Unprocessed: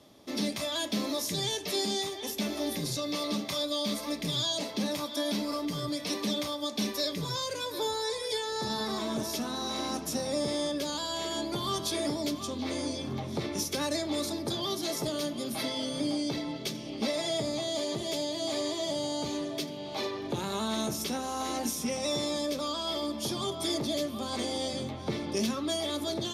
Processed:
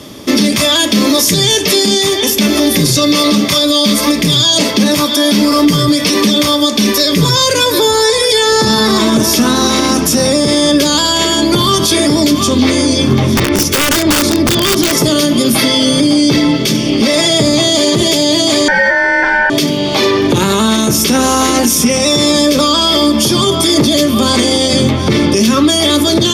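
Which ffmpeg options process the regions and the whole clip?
ffmpeg -i in.wav -filter_complex "[0:a]asettb=1/sr,asplit=3[link_01][link_02][link_03];[link_01]atrim=end=13.344[link_04];[link_02]atrim=start=13.34:end=14.98,asetpts=PTS-STARTPTS,afade=type=in:duration=0.004:curve=qsin,afade=type=out:start_time=1.636:duration=0.004:curve=qsin,lowpass=frequency=3500:poles=1,aeval=exprs='(mod(20*val(0)+1,2)-1)/20':channel_layout=same[link_05];[link_03]atrim=start=14.976[link_06];[link_04][link_05]acrossfade=duration=0.004:curve1=hsin:curve2=qsin[link_07];[link_07][link_06]acrossfade=duration=0.004:curve1=qsin:curve2=hsin,asettb=1/sr,asplit=3[link_08][link_09][link_10];[link_08]atrim=end=18.684[link_11];[link_09]atrim=start=18.68:end=19.5,asetpts=PTS-STARTPTS,afade=type=in:duration=0.004:curve=qsin,afade=type=out:start_time=0.816:duration=0.004:curve=qsin,highpass=200,lowpass=2100,equalizer=frequency=430:width=0.31:gain=8.5,aeval=exprs='val(0)*sin(2*PI*1200*n/s)':channel_layout=same[link_12];[link_10]atrim=start=19.496[link_13];[link_11][link_12]acrossfade=duration=0.004:curve1=hsin:curve2=qsin[link_14];[link_14][link_13]acrossfade=duration=0.004:curve1=qsin:curve2=hsin,equalizer=frequency=730:width=2:gain=-8.5,bandreject=frequency=4000:width=11,alimiter=level_in=28dB:limit=-1dB:release=50:level=0:latency=1,volume=-1dB" out.wav

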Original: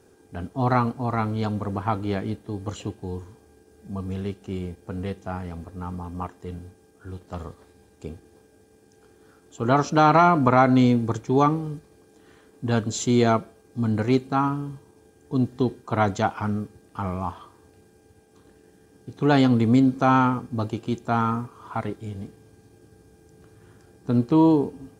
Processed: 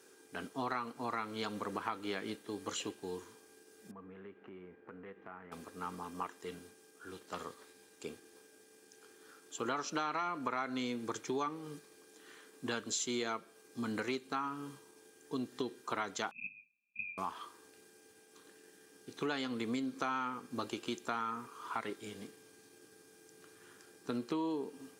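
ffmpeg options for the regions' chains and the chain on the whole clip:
ffmpeg -i in.wav -filter_complex "[0:a]asettb=1/sr,asplit=3[link_01][link_02][link_03];[link_01]atrim=end=3.914[link_04];[link_02]atrim=start=3.91:end=5.52,asetpts=PTS-STARTPTS,afade=type=in:duration=0.004:curve=qsin,afade=type=out:start_time=1.606:duration=0.004:curve=qsin,lowpass=frequency=2000:width=0.5412,lowpass=frequency=2000:width=1.3066,acompressor=threshold=-37dB:ratio=5:attack=3.2:release=140:knee=1:detection=peak[link_05];[link_03]atrim=start=5.516[link_06];[link_04][link_05]acrossfade=duration=0.004:curve1=hsin:curve2=qsin[link_07];[link_07][link_06]acrossfade=duration=0.004:curve1=qsin:curve2=hsin,asettb=1/sr,asplit=3[link_08][link_09][link_10];[link_08]atrim=end=16.314[link_11];[link_09]atrim=start=16.31:end=17.18,asetpts=PTS-STARTPTS,afade=type=in:duration=0.004:curve=qsin,afade=type=out:start_time=0.866:duration=0.004:curve=qsin,asuperpass=centerf=1300:order=12:qfactor=4.8,aeval=exprs='val(0)*sin(2*PI*1200*n/s)':channel_layout=same[link_12];[link_10]atrim=start=17.176[link_13];[link_11][link_12]acrossfade=duration=0.004:curve1=hsin:curve2=qsin[link_14];[link_14][link_13]acrossfade=duration=0.004:curve1=qsin:curve2=hsin,highpass=490,equalizer=frequency=700:width_type=o:width=1.1:gain=-11.5,acompressor=threshold=-37dB:ratio=6,volume=3dB" out.wav

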